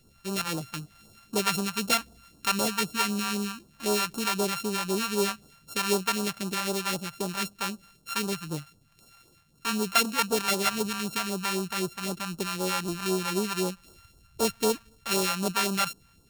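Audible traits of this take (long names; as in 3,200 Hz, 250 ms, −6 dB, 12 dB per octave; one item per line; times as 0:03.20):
a buzz of ramps at a fixed pitch in blocks of 32 samples
phaser sweep stages 2, 3.9 Hz, lowest notch 320–2,000 Hz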